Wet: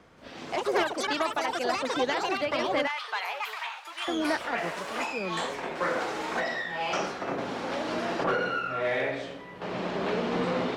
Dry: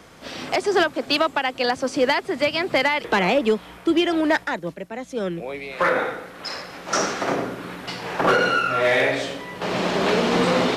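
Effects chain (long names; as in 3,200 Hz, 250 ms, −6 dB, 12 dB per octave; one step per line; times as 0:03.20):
low-pass filter 2,500 Hz 6 dB per octave
delay with pitch and tempo change per echo 179 ms, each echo +5 semitones, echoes 3
0:02.87–0:04.08: high-pass filter 840 Hz 24 dB per octave
level −8.5 dB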